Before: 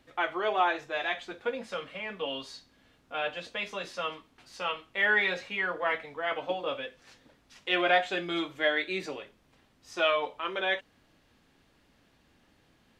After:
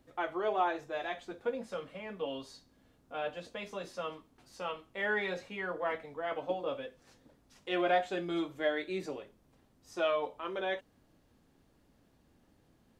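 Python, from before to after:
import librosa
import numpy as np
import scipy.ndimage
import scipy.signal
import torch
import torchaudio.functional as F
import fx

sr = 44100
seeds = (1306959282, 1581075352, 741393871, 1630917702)

y = fx.peak_eq(x, sr, hz=2600.0, db=-11.0, octaves=2.6)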